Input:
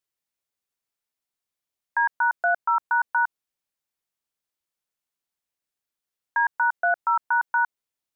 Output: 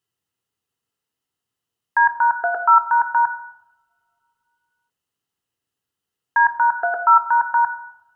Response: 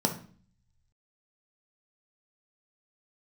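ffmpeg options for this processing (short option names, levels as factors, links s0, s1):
-filter_complex "[0:a]equalizer=f=1300:w=4.2:g=7.5,asplit=2[s0][s1];[1:a]atrim=start_sample=2205,asetrate=23373,aresample=44100[s2];[s1][s2]afir=irnorm=-1:irlink=0,volume=0.299[s3];[s0][s3]amix=inputs=2:normalize=0"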